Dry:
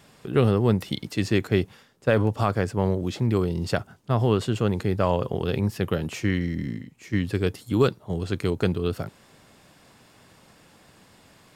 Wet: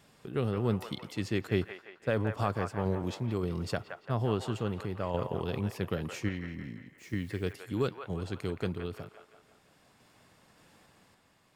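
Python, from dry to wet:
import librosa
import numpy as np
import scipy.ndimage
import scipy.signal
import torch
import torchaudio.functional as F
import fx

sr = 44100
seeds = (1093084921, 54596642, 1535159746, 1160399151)

y = fx.tremolo_random(x, sr, seeds[0], hz=3.5, depth_pct=55)
y = fx.echo_wet_bandpass(y, sr, ms=171, feedback_pct=51, hz=1300.0, wet_db=-5.0)
y = fx.quant_dither(y, sr, seeds[1], bits=10, dither='triangular', at=(6.98, 7.53))
y = F.gain(torch.from_numpy(y), -6.5).numpy()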